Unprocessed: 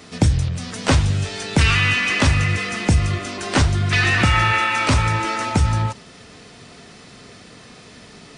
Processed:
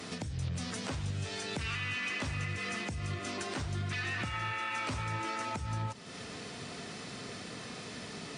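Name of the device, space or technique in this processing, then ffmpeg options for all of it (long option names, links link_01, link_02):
podcast mastering chain: -af "highpass=85,deesser=0.45,acompressor=threshold=-35dB:ratio=2.5,alimiter=level_in=2dB:limit=-24dB:level=0:latency=1:release=251,volume=-2dB" -ar 44100 -c:a libmp3lame -b:a 96k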